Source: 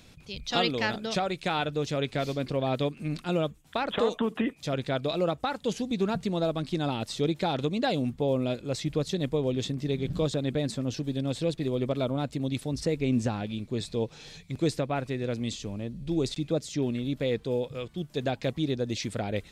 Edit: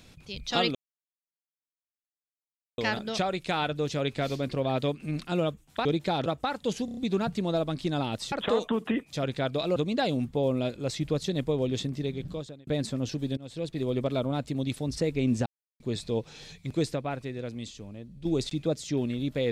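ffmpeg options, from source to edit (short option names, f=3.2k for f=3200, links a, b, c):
-filter_complex "[0:a]asplit=15[a][b][c][d][e][f][g][h][i][j][k][l][m][n][o];[a]atrim=end=0.75,asetpts=PTS-STARTPTS,afade=t=out:st=0.746:d=0.004:c=hsin,apad=pad_dur=2.03[p];[b]atrim=start=0.75:end=3.822,asetpts=PTS-STARTPTS,afade=t=in:d=0.004:c=hsin[q];[c]atrim=start=7.198:end=7.612[r];[d]atrim=start=5.258:end=5.882[s];[e]atrim=start=5.848:end=5.882[t];[f]atrim=start=5.848:end=5.882[u];[g]atrim=start=5.848:end=5.882[v];[h]atrim=start=5.848:end=7.202[w];[i]atrim=start=3.818:end=5.262[x];[j]atrim=start=7.608:end=10.52,asetpts=PTS-STARTPTS,afade=t=out:st=2.112:d=0.8[y];[k]atrim=start=10.52:end=11.22,asetpts=PTS-STARTPTS,afade=t=in:d=0.004:c=hsin,afade=t=out:st=0.696:d=0.004:c=hsin:silence=0.0944061[z];[l]atrim=start=11.22:end=13.31,asetpts=PTS-STARTPTS,afade=t=in:d=0.51:silence=0.0944061,afade=t=out:st=2.086:d=0.004:c=hsin[aa];[m]atrim=start=13.31:end=13.65,asetpts=PTS-STARTPTS,volume=0[ab];[n]atrim=start=13.65:end=16.1,asetpts=PTS-STARTPTS,afade=t=in:d=0.004:c=hsin,afade=t=out:st=0.86:d=1.59:c=qua:silence=0.398107[ac];[o]atrim=start=16.1,asetpts=PTS-STARTPTS,afade=t=in:d=0.004:c=hsin:silence=0.398107[ad];[p][q]concat=n=2:v=0:a=1[ae];[ae][r]acrossfade=d=0.004:c1=hsin:c2=hsin[af];[af][s]acrossfade=d=0.004:c1=hsin:c2=hsin[ag];[ag][t]acrossfade=d=0.004:c1=hsin:c2=hsin[ah];[ah][u]acrossfade=d=0.004:c1=hsin:c2=hsin[ai];[ai][v]acrossfade=d=0.004:c1=hsin:c2=hsin[aj];[aj][w]acrossfade=d=0.004:c1=hsin:c2=hsin[ak];[ak][x]acrossfade=d=0.004:c1=hsin:c2=hsin[al];[y][z][aa][ab][ac][ad]concat=n=6:v=0:a=1[am];[al][am]acrossfade=d=0.004:c1=hsin:c2=hsin"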